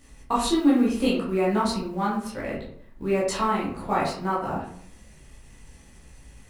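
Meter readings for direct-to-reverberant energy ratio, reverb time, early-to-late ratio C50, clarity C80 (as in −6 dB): −7.5 dB, 0.60 s, 3.5 dB, 7.5 dB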